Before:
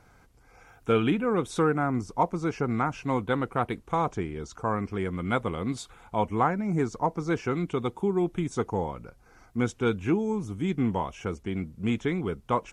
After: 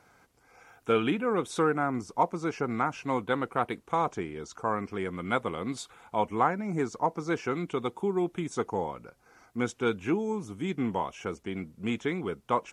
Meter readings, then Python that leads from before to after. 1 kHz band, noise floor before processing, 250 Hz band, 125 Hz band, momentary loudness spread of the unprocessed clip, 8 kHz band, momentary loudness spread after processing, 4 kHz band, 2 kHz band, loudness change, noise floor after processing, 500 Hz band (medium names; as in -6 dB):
-0.5 dB, -58 dBFS, -3.5 dB, -7.0 dB, 8 LU, 0.0 dB, 8 LU, 0.0 dB, 0.0 dB, -2.0 dB, -65 dBFS, -1.5 dB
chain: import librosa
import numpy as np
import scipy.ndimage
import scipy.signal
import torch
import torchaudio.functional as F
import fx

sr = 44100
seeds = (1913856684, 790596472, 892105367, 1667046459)

y = fx.highpass(x, sr, hz=280.0, slope=6)